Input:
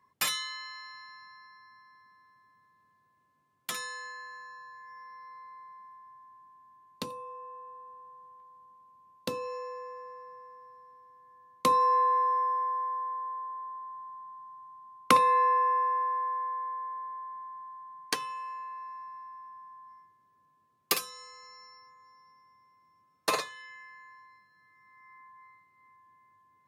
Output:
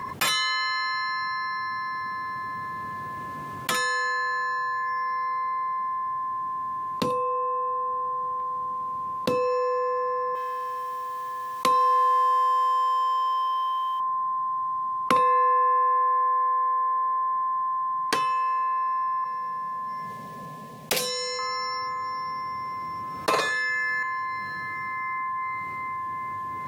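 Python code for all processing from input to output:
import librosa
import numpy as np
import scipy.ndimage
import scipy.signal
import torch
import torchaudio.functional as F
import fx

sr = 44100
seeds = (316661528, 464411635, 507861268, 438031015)

y = fx.chain(x, sr, fx.law_mismatch(coded='A'),
    fx.tilt_shelf(db=-5.5, hz=870.0), at=(10.35, 14.0))
y = fx.chain(y, sr, fx.fixed_phaser(hz=330.0, stages=6),
    fx.doppler_dist(depth_ms=0.46), at=(19.24, 21.39))
y = fx.chain(y, sr, fx.high_shelf(hz=8300.0, db=6.0),
    fx.notch_comb(f0_hz=1000.0),
    fx.env_flatten(amount_pct=70), at=(23.41, 24.03))
y = fx.high_shelf(y, sr, hz=3000.0, db=-8.5)
y = fx.env_flatten(y, sr, amount_pct=70)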